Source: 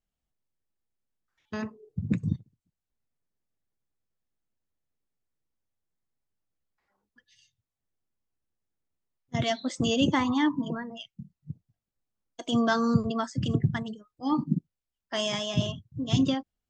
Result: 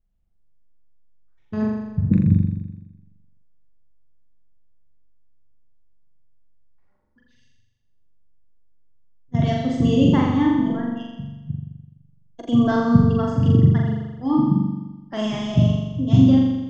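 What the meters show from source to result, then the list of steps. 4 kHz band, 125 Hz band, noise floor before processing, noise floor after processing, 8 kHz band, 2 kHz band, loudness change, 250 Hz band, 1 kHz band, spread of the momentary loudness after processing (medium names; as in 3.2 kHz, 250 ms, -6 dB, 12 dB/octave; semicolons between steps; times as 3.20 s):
-3.0 dB, +13.0 dB, under -85 dBFS, -59 dBFS, no reading, -0.5 dB, +9.0 dB, +10.0 dB, +3.5 dB, 16 LU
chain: tilt EQ -3.5 dB/octave; on a send: flutter echo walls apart 7.2 m, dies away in 1.1 s; on the sum: trim -1 dB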